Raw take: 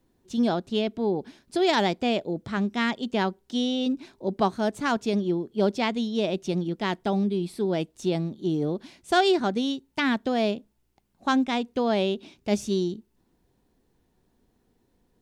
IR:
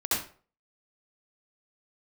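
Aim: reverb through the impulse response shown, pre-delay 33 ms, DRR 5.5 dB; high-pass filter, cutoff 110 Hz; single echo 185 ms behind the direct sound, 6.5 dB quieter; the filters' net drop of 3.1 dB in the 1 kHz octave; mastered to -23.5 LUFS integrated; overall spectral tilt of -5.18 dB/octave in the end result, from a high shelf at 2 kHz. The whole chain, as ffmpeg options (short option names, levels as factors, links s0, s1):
-filter_complex "[0:a]highpass=110,equalizer=f=1000:t=o:g=-3,highshelf=f=2000:g=-6.5,aecho=1:1:185:0.473,asplit=2[s0][s1];[1:a]atrim=start_sample=2205,adelay=33[s2];[s1][s2]afir=irnorm=-1:irlink=0,volume=0.168[s3];[s0][s3]amix=inputs=2:normalize=0,volume=1.26"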